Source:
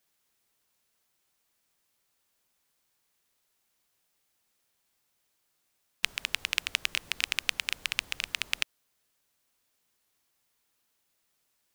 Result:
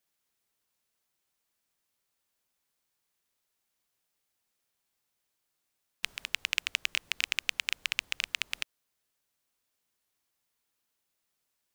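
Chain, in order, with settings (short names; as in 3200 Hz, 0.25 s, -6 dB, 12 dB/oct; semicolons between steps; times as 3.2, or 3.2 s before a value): 6.28–8.51 sample leveller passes 2; gain -5.5 dB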